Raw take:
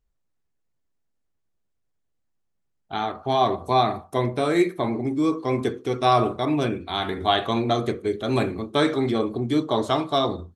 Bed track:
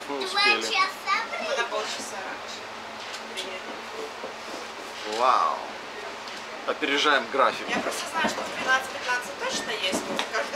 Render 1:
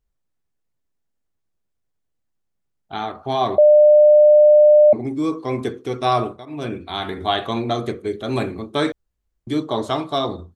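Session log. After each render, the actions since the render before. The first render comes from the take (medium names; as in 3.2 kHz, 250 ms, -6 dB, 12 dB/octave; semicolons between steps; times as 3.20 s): 3.58–4.93 s: bleep 600 Hz -7 dBFS; 6.17–6.75 s: dip -18.5 dB, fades 0.29 s; 8.92–9.47 s: room tone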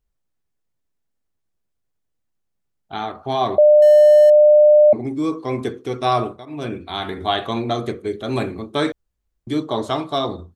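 3.82–4.30 s: jump at every zero crossing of -25.5 dBFS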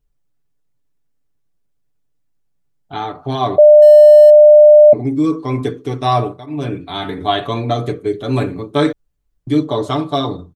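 bass shelf 370 Hz +6 dB; comb 6.9 ms, depth 65%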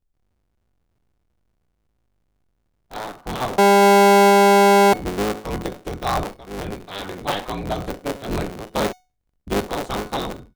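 cycle switcher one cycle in 3, inverted; feedback comb 740 Hz, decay 0.31 s, mix 60%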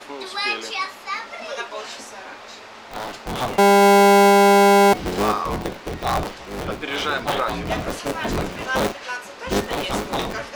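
add bed track -3 dB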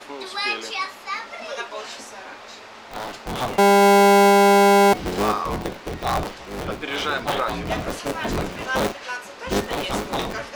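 trim -1 dB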